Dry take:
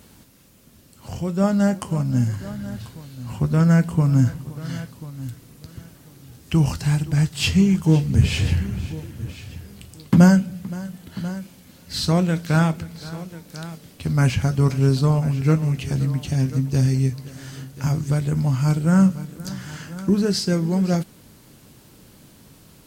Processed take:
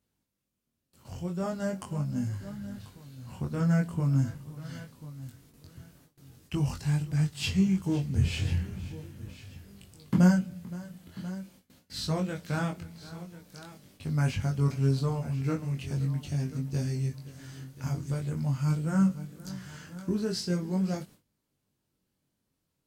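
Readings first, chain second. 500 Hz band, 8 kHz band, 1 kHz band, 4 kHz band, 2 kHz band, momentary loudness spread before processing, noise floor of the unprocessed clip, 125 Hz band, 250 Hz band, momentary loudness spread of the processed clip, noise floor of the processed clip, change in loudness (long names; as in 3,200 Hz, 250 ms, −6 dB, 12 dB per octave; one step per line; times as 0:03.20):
−10.0 dB, −10.0 dB, −10.0 dB, −10.0 dB, −9.5 dB, 18 LU, −50 dBFS, −9.5 dB, −9.5 dB, 18 LU, −81 dBFS, −9.5 dB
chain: chorus effect 0.42 Hz, delay 20 ms, depth 2.8 ms
noise gate with hold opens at −39 dBFS
level −7 dB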